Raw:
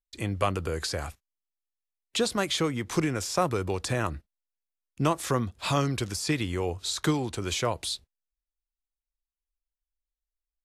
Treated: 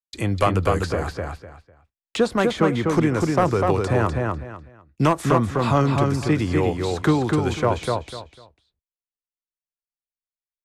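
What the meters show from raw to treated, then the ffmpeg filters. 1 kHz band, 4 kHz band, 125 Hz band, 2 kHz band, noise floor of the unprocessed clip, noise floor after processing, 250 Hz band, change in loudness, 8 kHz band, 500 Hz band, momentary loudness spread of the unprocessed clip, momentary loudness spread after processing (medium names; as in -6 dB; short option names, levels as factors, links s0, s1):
+8.5 dB, -2.0 dB, +9.0 dB, +6.0 dB, under -85 dBFS, under -85 dBFS, +9.0 dB, +7.5 dB, -4.5 dB, +9.0 dB, 7 LU, 11 LU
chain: -filter_complex "[0:a]agate=range=0.0224:threshold=0.00355:ratio=3:detection=peak,equalizer=f=5500:t=o:w=2.8:g=5,acrossover=split=150|1900[s0][s1][s2];[s2]acompressor=threshold=0.00631:ratio=5[s3];[s0][s1][s3]amix=inputs=3:normalize=0,volume=7.5,asoftclip=hard,volume=0.133,asplit=2[s4][s5];[s5]adelay=249,lowpass=f=4800:p=1,volume=0.708,asplit=2[s6][s7];[s7]adelay=249,lowpass=f=4800:p=1,volume=0.24,asplit=2[s8][s9];[s9]adelay=249,lowpass=f=4800:p=1,volume=0.24[s10];[s4][s6][s8][s10]amix=inputs=4:normalize=0,adynamicequalizer=threshold=0.00891:dfrequency=1600:dqfactor=0.7:tfrequency=1600:tqfactor=0.7:attack=5:release=100:ratio=0.375:range=2.5:mode=cutabove:tftype=highshelf,volume=2.37"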